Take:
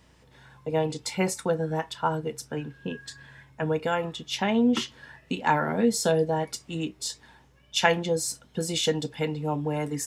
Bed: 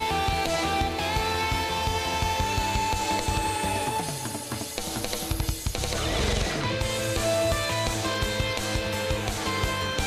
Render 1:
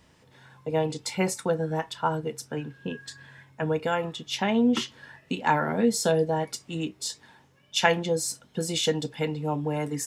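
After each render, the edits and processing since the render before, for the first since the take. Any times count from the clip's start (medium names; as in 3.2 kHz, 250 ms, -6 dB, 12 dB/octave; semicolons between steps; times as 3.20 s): de-hum 60 Hz, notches 2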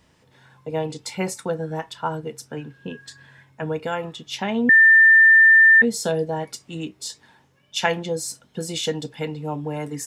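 4.69–5.82 s: bleep 1.79 kHz -8.5 dBFS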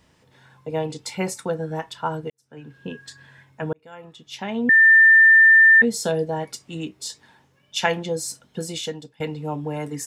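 2.30–2.76 s: fade in quadratic; 3.73–4.92 s: fade in; 8.59–9.20 s: fade out linear, to -21 dB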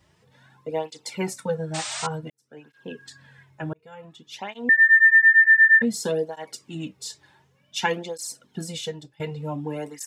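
1.74–2.07 s: painted sound noise 600–9000 Hz -29 dBFS; cancelling through-zero flanger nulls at 0.55 Hz, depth 4.5 ms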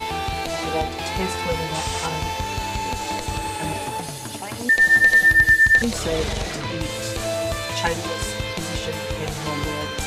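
add bed -0.5 dB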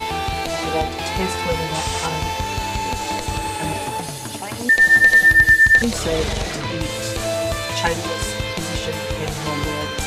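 trim +2.5 dB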